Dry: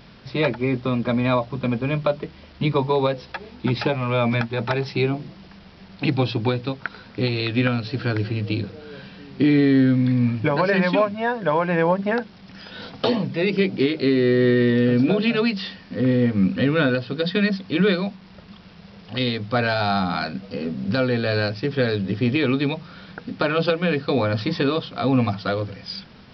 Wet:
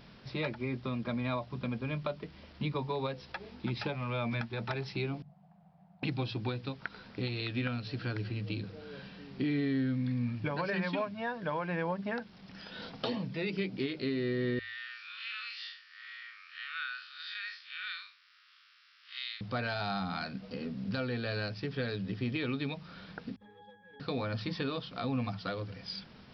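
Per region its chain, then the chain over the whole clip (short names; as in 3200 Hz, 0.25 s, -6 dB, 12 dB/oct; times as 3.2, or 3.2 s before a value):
5.22–6.03 double band-pass 340 Hz, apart 2.2 oct + three-band squash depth 40%
14.59–19.41 time blur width 0.113 s + steep high-pass 1200 Hz 72 dB/oct
23.36–24 minimum comb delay 3.8 ms + bell 2900 Hz +5 dB 0.6 oct + octave resonator G#, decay 0.73 s
whole clip: notches 50/100 Hz; dynamic EQ 480 Hz, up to -4 dB, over -33 dBFS, Q 0.74; compressor 1.5:1, threshold -30 dBFS; gain -7.5 dB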